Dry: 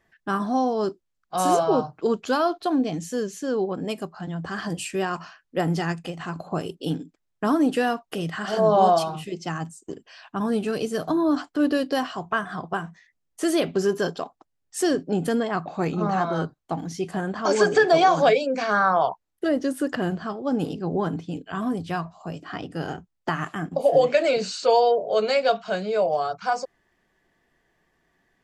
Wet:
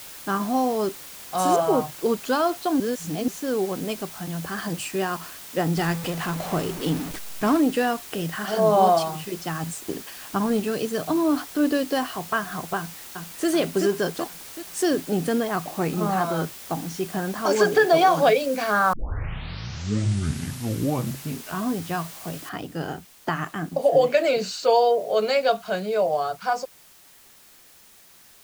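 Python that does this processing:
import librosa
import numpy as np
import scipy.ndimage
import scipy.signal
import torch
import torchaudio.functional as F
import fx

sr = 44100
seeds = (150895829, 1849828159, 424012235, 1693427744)

y = fx.lowpass(x, sr, hz=3400.0, slope=24, at=(1.56, 2.06))
y = fx.zero_step(y, sr, step_db=-28.5, at=(5.77, 7.61))
y = fx.transient(y, sr, attack_db=5, sustain_db=11, at=(9.63, 10.6))
y = fx.echo_throw(y, sr, start_s=12.77, length_s=0.71, ms=380, feedback_pct=55, wet_db=-3.5)
y = fx.lowpass(y, sr, hz=fx.line((17.73, 5000.0), (18.34, 10000.0)), slope=12, at=(17.73, 18.34), fade=0.02)
y = fx.noise_floor_step(y, sr, seeds[0], at_s=22.49, before_db=-41, after_db=-52, tilt_db=0.0)
y = fx.edit(y, sr, fx.reverse_span(start_s=2.8, length_s=0.48),
    fx.tape_start(start_s=18.93, length_s=2.72), tone=tone)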